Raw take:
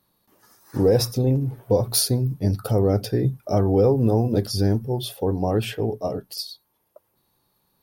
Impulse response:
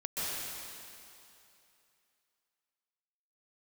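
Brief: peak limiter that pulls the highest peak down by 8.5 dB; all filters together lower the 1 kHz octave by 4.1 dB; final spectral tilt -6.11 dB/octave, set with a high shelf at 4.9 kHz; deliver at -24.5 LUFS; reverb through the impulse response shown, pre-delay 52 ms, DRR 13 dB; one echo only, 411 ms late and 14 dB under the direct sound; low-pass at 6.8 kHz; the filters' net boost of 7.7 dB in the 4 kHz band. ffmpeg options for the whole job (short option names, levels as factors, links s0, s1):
-filter_complex "[0:a]lowpass=6800,equalizer=f=1000:t=o:g=-7,equalizer=f=4000:t=o:g=8.5,highshelf=f=4900:g=4,alimiter=limit=0.2:level=0:latency=1,aecho=1:1:411:0.2,asplit=2[s0][s1];[1:a]atrim=start_sample=2205,adelay=52[s2];[s1][s2]afir=irnorm=-1:irlink=0,volume=0.112[s3];[s0][s3]amix=inputs=2:normalize=0,volume=0.944"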